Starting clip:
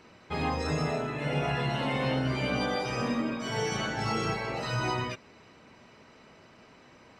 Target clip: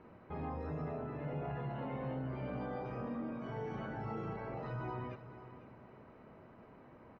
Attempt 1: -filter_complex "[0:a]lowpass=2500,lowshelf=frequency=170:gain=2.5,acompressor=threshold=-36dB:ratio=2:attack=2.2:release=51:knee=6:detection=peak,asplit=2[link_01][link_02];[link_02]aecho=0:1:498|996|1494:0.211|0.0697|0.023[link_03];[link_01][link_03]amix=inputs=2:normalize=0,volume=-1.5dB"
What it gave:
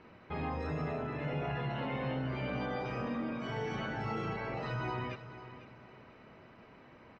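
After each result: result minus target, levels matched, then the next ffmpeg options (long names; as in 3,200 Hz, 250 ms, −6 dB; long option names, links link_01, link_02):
2,000 Hz band +5.5 dB; downward compressor: peak gain reduction −4 dB
-filter_complex "[0:a]lowpass=1200,lowshelf=frequency=170:gain=2.5,acompressor=threshold=-36dB:ratio=2:attack=2.2:release=51:knee=6:detection=peak,asplit=2[link_01][link_02];[link_02]aecho=0:1:498|996|1494:0.211|0.0697|0.023[link_03];[link_01][link_03]amix=inputs=2:normalize=0,volume=-1.5dB"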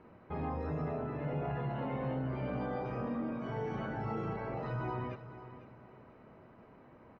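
downward compressor: peak gain reduction −4 dB
-filter_complex "[0:a]lowpass=1200,lowshelf=frequency=170:gain=2.5,acompressor=threshold=-44dB:ratio=2:attack=2.2:release=51:knee=6:detection=peak,asplit=2[link_01][link_02];[link_02]aecho=0:1:498|996|1494:0.211|0.0697|0.023[link_03];[link_01][link_03]amix=inputs=2:normalize=0,volume=-1.5dB"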